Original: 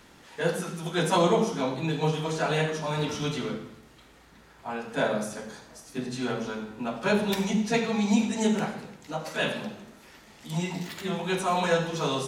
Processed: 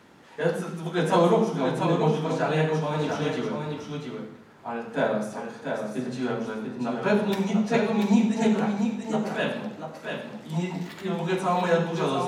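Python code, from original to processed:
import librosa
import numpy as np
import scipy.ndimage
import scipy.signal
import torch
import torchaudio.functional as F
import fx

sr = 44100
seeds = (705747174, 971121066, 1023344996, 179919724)

y = scipy.signal.sosfilt(scipy.signal.butter(2, 110.0, 'highpass', fs=sr, output='sos'), x)
y = fx.high_shelf(y, sr, hz=2400.0, db=-10.0)
y = y + 10.0 ** (-5.5 / 20.0) * np.pad(y, (int(688 * sr / 1000.0), 0))[:len(y)]
y = y * librosa.db_to_amplitude(2.5)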